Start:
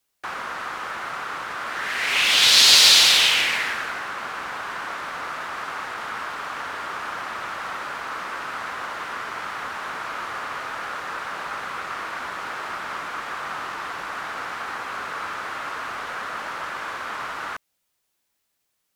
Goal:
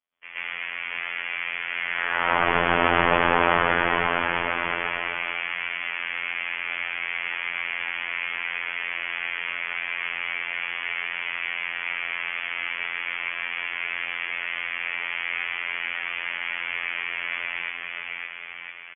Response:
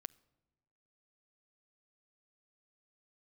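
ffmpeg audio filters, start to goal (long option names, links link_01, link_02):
-filter_complex "[0:a]lowpass=frequency=3000:width_type=q:width=0.5098,lowpass=frequency=3000:width_type=q:width=0.6013,lowpass=frequency=3000:width_type=q:width=0.9,lowpass=frequency=3000:width_type=q:width=2.563,afreqshift=-3500,aecho=1:1:560|1008|1366|1653|1882:0.631|0.398|0.251|0.158|0.1,asplit=2[link_01][link_02];[1:a]atrim=start_sample=2205,adelay=125[link_03];[link_02][link_03]afir=irnorm=-1:irlink=0,volume=14.5dB[link_04];[link_01][link_04]amix=inputs=2:normalize=0,afftfilt=real='hypot(re,im)*cos(PI*b)':imag='0':win_size=2048:overlap=0.75,aeval=exprs='2.66*(cos(1*acos(clip(val(0)/2.66,-1,1)))-cos(1*PI/2))+0.0211*(cos(2*acos(clip(val(0)/2.66,-1,1)))-cos(2*PI/2))':channel_layout=same,volume=-7.5dB"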